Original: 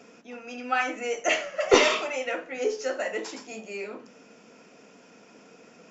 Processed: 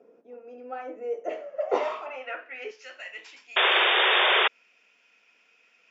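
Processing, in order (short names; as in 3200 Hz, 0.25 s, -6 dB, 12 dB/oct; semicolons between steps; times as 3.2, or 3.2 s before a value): band-pass sweep 460 Hz -> 2600 Hz, 1.38–2.88; 2.06–2.71 speaker cabinet 210–5600 Hz, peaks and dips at 260 Hz +7 dB, 410 Hz +10 dB, 670 Hz +8 dB, 2700 Hz +8 dB; 3.56–4.48 painted sound noise 350–3700 Hz -21 dBFS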